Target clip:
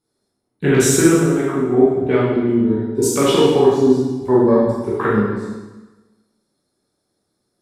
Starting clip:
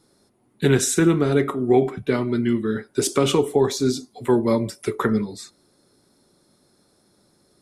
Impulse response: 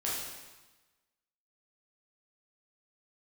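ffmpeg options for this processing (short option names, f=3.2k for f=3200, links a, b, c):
-filter_complex "[0:a]afwtdn=0.0316,asettb=1/sr,asplit=3[a][b][c];[a]atrim=end=1.134[d];[b]atrim=start=1.13:end=1.78,asetpts=PTS-STARTPTS,afade=t=in:d=0.004:c=qsin,afade=t=out:st=0.646:d=0.004:c=qsin,acompressor=threshold=-23dB:ratio=2.5[e];[c]atrim=start=1.776[f];[d][e]acrossfade=d=0.004:c1=hsin:c2=qsin[g];[g][f]acrossfade=d=0.004:c1=qsin:c2=hsin[h];[1:a]atrim=start_sample=2205[i];[h][i]afir=irnorm=-1:irlink=0,volume=1dB"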